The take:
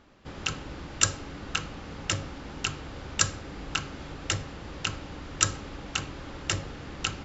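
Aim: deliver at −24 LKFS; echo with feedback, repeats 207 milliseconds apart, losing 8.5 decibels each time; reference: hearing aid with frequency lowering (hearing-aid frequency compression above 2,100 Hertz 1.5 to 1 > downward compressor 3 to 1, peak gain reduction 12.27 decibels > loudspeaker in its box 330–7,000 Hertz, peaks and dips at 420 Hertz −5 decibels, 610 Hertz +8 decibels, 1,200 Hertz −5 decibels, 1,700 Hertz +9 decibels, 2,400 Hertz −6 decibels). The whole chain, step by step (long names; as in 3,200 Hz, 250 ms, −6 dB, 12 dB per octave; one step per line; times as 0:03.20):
repeating echo 207 ms, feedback 38%, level −8.5 dB
hearing-aid frequency compression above 2,100 Hz 1.5 to 1
downward compressor 3 to 1, threshold −36 dBFS
loudspeaker in its box 330–7,000 Hz, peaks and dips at 420 Hz −5 dB, 610 Hz +8 dB, 1,200 Hz −5 dB, 1,700 Hz +9 dB, 2,400 Hz −6 dB
level +16 dB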